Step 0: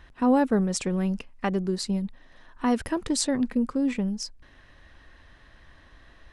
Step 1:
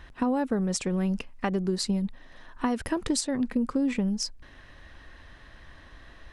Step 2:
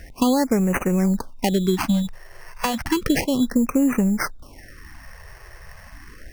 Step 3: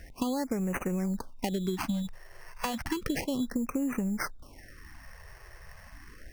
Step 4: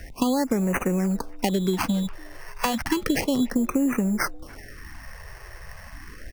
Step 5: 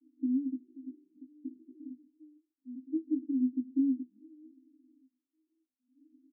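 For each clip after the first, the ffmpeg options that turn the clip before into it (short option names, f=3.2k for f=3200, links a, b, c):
-af "alimiter=limit=-16dB:level=0:latency=1:release=463,acompressor=threshold=-26dB:ratio=6,volume=3.5dB"
-af "acrusher=samples=12:mix=1:aa=0.000001,afftfilt=real='re*(1-between(b*sr/1024,230*pow(4200/230,0.5+0.5*sin(2*PI*0.32*pts/sr))/1.41,230*pow(4200/230,0.5+0.5*sin(2*PI*0.32*pts/sr))*1.41))':imag='im*(1-between(b*sr/1024,230*pow(4200/230,0.5+0.5*sin(2*PI*0.32*pts/sr))/1.41,230*pow(4200/230,0.5+0.5*sin(2*PI*0.32*pts/sr))*1.41))':win_size=1024:overlap=0.75,volume=7.5dB"
-af "acompressor=threshold=-20dB:ratio=6,volume=-7dB"
-filter_complex "[0:a]acrossover=split=180|4100[a][b][c];[a]asoftclip=type=hard:threshold=-38.5dB[d];[b]asplit=3[e][f][g];[f]adelay=291,afreqshift=110,volume=-22.5dB[h];[g]adelay=582,afreqshift=220,volume=-32.1dB[i];[e][h][i]amix=inputs=3:normalize=0[j];[d][j][c]amix=inputs=3:normalize=0,volume=8dB"
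-filter_complex "[0:a]asuperpass=centerf=280:order=12:qfactor=3.6,asplit=2[a][b];[b]adelay=19,volume=-4dB[c];[a][c]amix=inputs=2:normalize=0,volume=-7dB"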